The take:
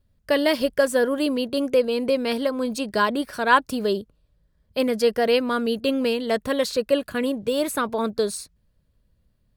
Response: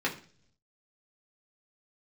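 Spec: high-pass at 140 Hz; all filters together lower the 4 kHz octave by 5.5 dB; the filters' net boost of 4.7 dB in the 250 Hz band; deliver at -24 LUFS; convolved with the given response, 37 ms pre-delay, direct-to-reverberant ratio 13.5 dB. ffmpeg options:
-filter_complex "[0:a]highpass=140,equalizer=f=250:t=o:g=5.5,equalizer=f=4000:t=o:g=-7.5,asplit=2[s0][s1];[1:a]atrim=start_sample=2205,adelay=37[s2];[s1][s2]afir=irnorm=-1:irlink=0,volume=0.075[s3];[s0][s3]amix=inputs=2:normalize=0,volume=0.708"

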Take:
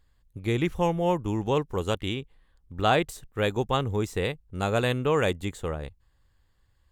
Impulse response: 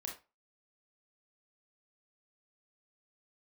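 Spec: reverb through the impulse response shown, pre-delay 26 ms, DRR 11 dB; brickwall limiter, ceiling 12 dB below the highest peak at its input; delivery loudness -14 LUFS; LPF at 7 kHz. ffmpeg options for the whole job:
-filter_complex "[0:a]lowpass=7000,alimiter=limit=0.0794:level=0:latency=1,asplit=2[s0][s1];[1:a]atrim=start_sample=2205,adelay=26[s2];[s1][s2]afir=irnorm=-1:irlink=0,volume=0.335[s3];[s0][s3]amix=inputs=2:normalize=0,volume=9.44"

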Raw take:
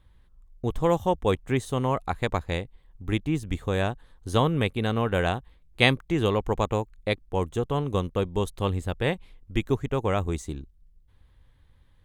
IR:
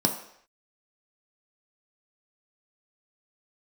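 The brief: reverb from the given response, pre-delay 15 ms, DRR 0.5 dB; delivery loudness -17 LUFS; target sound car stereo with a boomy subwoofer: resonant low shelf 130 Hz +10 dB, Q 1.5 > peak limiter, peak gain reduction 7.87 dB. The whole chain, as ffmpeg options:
-filter_complex "[0:a]asplit=2[s0][s1];[1:a]atrim=start_sample=2205,adelay=15[s2];[s1][s2]afir=irnorm=-1:irlink=0,volume=0.282[s3];[s0][s3]amix=inputs=2:normalize=0,lowshelf=f=130:t=q:w=1.5:g=10,volume=1.5,alimiter=limit=0.501:level=0:latency=1"

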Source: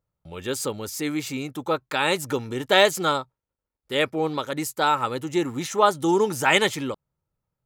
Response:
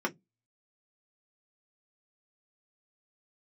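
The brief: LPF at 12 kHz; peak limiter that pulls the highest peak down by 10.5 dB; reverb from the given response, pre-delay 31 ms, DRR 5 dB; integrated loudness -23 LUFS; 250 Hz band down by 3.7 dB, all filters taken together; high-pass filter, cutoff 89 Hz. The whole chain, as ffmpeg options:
-filter_complex "[0:a]highpass=89,lowpass=12000,equalizer=f=250:t=o:g=-5.5,alimiter=limit=0.224:level=0:latency=1,asplit=2[s0][s1];[1:a]atrim=start_sample=2205,adelay=31[s2];[s1][s2]afir=irnorm=-1:irlink=0,volume=0.237[s3];[s0][s3]amix=inputs=2:normalize=0,volume=1.41"

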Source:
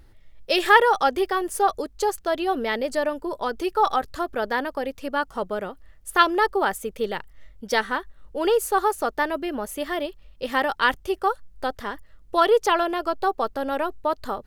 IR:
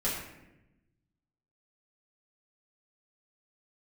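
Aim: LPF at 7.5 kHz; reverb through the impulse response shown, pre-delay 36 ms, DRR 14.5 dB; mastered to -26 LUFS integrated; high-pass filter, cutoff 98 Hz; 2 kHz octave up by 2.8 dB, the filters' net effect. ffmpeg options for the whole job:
-filter_complex "[0:a]highpass=98,lowpass=7500,equalizer=f=2000:t=o:g=3.5,asplit=2[s0][s1];[1:a]atrim=start_sample=2205,adelay=36[s2];[s1][s2]afir=irnorm=-1:irlink=0,volume=0.0794[s3];[s0][s3]amix=inputs=2:normalize=0,volume=0.708"

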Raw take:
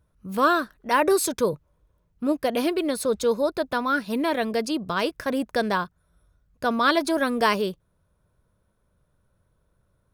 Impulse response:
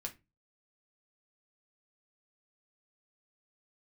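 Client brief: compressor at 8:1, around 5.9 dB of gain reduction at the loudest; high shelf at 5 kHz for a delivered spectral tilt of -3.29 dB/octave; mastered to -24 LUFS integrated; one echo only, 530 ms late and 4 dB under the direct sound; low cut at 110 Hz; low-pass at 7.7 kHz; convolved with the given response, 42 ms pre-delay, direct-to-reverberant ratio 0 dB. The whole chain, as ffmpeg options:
-filter_complex "[0:a]highpass=110,lowpass=7700,highshelf=f=5000:g=-6.5,acompressor=threshold=0.0794:ratio=8,aecho=1:1:530:0.631,asplit=2[s0][s1];[1:a]atrim=start_sample=2205,adelay=42[s2];[s1][s2]afir=irnorm=-1:irlink=0,volume=1.19[s3];[s0][s3]amix=inputs=2:normalize=0,volume=1.06"

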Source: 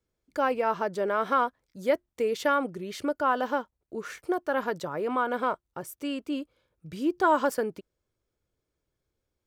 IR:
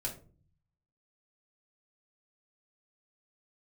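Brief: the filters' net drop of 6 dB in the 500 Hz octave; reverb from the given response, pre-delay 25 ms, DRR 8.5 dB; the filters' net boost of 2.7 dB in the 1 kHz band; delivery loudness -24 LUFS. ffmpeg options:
-filter_complex "[0:a]equalizer=f=500:t=o:g=-9,equalizer=f=1000:t=o:g=5.5,asplit=2[s0][s1];[1:a]atrim=start_sample=2205,adelay=25[s2];[s1][s2]afir=irnorm=-1:irlink=0,volume=0.335[s3];[s0][s3]amix=inputs=2:normalize=0,volume=1.58"

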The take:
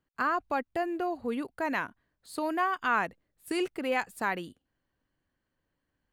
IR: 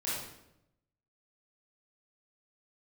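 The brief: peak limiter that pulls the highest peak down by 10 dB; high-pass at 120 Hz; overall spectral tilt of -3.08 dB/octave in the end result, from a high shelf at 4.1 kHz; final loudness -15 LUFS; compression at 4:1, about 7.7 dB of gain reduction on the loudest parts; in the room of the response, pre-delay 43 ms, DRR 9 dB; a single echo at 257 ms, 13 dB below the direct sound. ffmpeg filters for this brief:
-filter_complex "[0:a]highpass=120,highshelf=f=4100:g=-7.5,acompressor=threshold=0.0224:ratio=4,alimiter=level_in=2.24:limit=0.0631:level=0:latency=1,volume=0.447,aecho=1:1:257:0.224,asplit=2[s0][s1];[1:a]atrim=start_sample=2205,adelay=43[s2];[s1][s2]afir=irnorm=-1:irlink=0,volume=0.211[s3];[s0][s3]amix=inputs=2:normalize=0,volume=18.8"

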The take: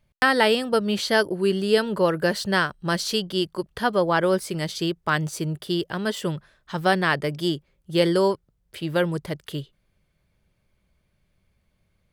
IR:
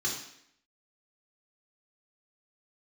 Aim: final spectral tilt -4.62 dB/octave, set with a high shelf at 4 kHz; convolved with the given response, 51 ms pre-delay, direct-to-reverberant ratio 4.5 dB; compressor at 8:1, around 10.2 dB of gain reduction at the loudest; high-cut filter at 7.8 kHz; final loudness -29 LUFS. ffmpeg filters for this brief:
-filter_complex "[0:a]lowpass=7800,highshelf=f=4000:g=-9,acompressor=threshold=0.0562:ratio=8,asplit=2[s0][s1];[1:a]atrim=start_sample=2205,adelay=51[s2];[s1][s2]afir=irnorm=-1:irlink=0,volume=0.299[s3];[s0][s3]amix=inputs=2:normalize=0"

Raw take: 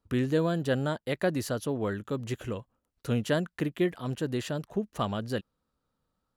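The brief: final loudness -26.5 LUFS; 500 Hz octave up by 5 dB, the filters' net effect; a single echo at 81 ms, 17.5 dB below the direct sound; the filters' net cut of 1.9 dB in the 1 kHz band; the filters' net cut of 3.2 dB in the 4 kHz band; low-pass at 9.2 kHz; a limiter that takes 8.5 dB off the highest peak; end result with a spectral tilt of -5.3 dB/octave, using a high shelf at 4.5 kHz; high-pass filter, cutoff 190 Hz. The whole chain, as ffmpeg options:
-af "highpass=190,lowpass=9200,equalizer=f=500:t=o:g=7.5,equalizer=f=1000:t=o:g=-6,equalizer=f=4000:t=o:g=-5.5,highshelf=f=4500:g=3,alimiter=limit=0.106:level=0:latency=1,aecho=1:1:81:0.133,volume=1.78"

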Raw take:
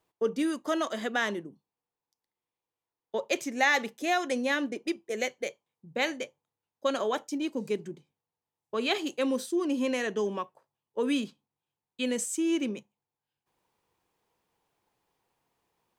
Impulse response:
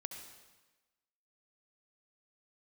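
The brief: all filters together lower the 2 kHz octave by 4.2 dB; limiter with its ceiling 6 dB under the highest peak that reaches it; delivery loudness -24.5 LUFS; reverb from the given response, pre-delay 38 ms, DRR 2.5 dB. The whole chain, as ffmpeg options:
-filter_complex "[0:a]equalizer=f=2000:t=o:g=-5,alimiter=limit=0.0944:level=0:latency=1,asplit=2[s0][s1];[1:a]atrim=start_sample=2205,adelay=38[s2];[s1][s2]afir=irnorm=-1:irlink=0,volume=1[s3];[s0][s3]amix=inputs=2:normalize=0,volume=2"

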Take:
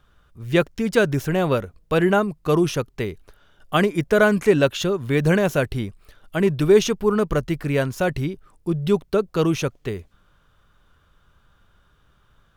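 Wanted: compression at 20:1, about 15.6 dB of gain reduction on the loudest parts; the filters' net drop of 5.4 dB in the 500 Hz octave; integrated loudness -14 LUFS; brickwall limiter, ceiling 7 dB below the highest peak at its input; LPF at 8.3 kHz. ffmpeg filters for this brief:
-af "lowpass=8300,equalizer=f=500:t=o:g=-7,acompressor=threshold=0.0316:ratio=20,volume=15,alimiter=limit=0.75:level=0:latency=1"

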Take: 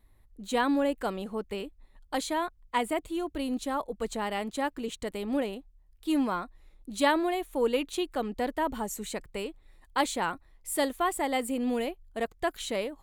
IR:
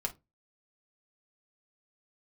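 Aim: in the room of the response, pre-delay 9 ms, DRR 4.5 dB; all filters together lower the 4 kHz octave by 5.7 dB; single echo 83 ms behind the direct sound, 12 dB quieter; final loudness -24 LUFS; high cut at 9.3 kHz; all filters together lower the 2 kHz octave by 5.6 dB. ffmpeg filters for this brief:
-filter_complex "[0:a]lowpass=9300,equalizer=f=2000:t=o:g=-6,equalizer=f=4000:t=o:g=-5,aecho=1:1:83:0.251,asplit=2[s0][s1];[1:a]atrim=start_sample=2205,adelay=9[s2];[s1][s2]afir=irnorm=-1:irlink=0,volume=0.447[s3];[s0][s3]amix=inputs=2:normalize=0,volume=2.11"

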